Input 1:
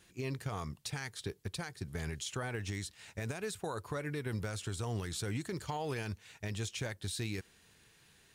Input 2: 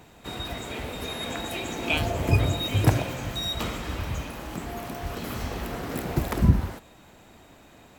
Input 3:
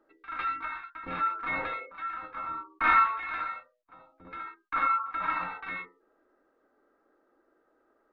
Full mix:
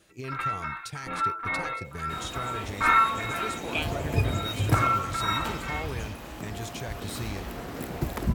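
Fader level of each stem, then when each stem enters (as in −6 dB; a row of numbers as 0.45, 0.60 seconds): +0.5, −4.0, +1.5 decibels; 0.00, 1.85, 0.00 seconds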